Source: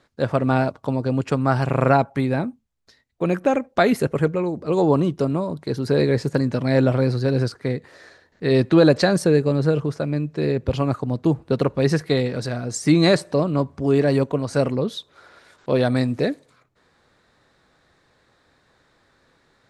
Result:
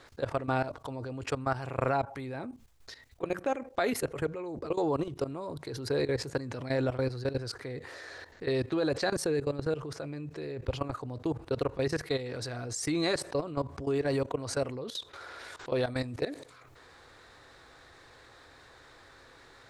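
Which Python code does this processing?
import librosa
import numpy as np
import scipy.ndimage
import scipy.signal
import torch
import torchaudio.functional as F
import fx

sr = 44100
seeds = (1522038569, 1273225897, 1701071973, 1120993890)

y = fx.notch(x, sr, hz=600.0, q=16.0)
y = fx.level_steps(y, sr, step_db=19)
y = fx.peak_eq(y, sr, hz=190.0, db=-12.5, octaves=0.78)
y = fx.env_flatten(y, sr, amount_pct=50)
y = F.gain(torch.from_numpy(y), -7.5).numpy()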